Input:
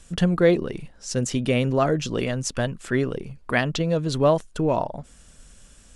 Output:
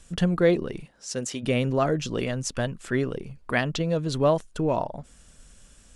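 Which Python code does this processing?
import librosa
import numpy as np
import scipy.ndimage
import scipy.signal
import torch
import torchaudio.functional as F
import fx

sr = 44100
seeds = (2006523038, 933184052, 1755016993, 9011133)

y = fx.highpass(x, sr, hz=fx.line((0.81, 140.0), (1.42, 530.0)), slope=6, at=(0.81, 1.42), fade=0.02)
y = y * librosa.db_to_amplitude(-2.5)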